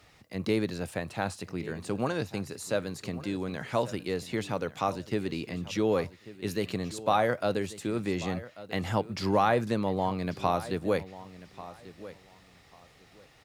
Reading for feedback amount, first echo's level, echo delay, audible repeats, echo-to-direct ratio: 21%, −16.5 dB, 1,140 ms, 2, −16.5 dB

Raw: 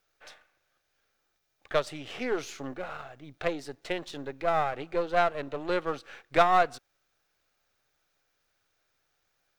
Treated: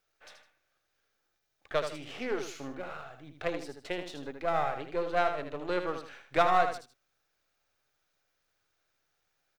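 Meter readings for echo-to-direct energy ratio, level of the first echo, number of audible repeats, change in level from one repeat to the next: −7.0 dB, −7.5 dB, 2, −10.0 dB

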